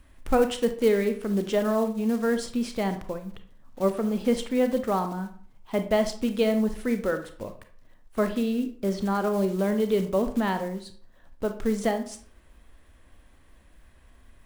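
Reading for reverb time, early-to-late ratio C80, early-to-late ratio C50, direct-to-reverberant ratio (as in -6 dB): 0.50 s, 15.0 dB, 10.5 dB, 8.0 dB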